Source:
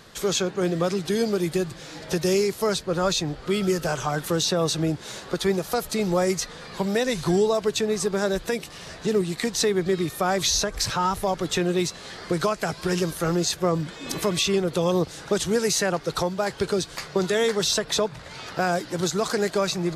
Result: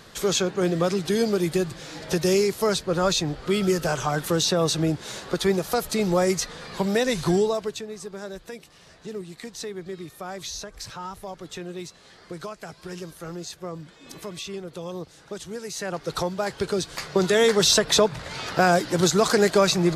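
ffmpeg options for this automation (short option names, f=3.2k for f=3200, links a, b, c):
-af "volume=18dB,afade=t=out:st=7.27:d=0.58:silence=0.223872,afade=t=in:st=15.71:d=0.44:silence=0.298538,afade=t=in:st=16.72:d=0.99:silence=0.473151"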